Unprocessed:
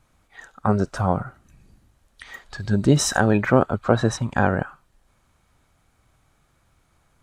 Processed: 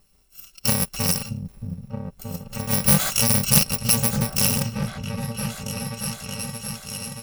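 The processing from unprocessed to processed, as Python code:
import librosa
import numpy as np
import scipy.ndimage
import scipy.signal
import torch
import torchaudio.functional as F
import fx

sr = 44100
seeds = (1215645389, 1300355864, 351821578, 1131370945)

p1 = fx.bit_reversed(x, sr, seeds[0], block=128)
p2 = p1 + 0.4 * np.pad(p1, (int(5.2 * sr / 1000.0), 0))[:len(p1)]
p3 = p2 + fx.echo_opening(p2, sr, ms=626, hz=200, octaves=2, feedback_pct=70, wet_db=-3, dry=0)
y = fx.doppler_dist(p3, sr, depth_ms=0.32)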